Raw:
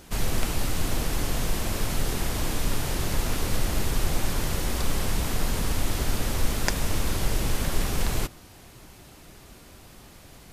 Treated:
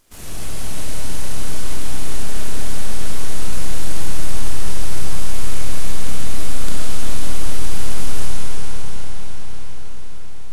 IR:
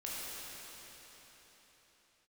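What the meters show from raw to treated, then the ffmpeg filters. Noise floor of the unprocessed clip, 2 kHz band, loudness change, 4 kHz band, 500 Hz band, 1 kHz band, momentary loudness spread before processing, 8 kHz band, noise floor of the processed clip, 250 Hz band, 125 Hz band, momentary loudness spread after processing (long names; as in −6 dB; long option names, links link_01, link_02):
−49 dBFS, −0.5 dB, −1.0 dB, +1.0 dB, −1.5 dB, −1.0 dB, 20 LU, +3.0 dB, −17 dBFS, −1.0 dB, +3.0 dB, 9 LU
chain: -filter_complex "[0:a]highshelf=frequency=8300:gain=11.5,aeval=exprs='abs(val(0))':channel_layout=same[link_01];[1:a]atrim=start_sample=2205,asetrate=23373,aresample=44100[link_02];[link_01][link_02]afir=irnorm=-1:irlink=0,volume=-7dB"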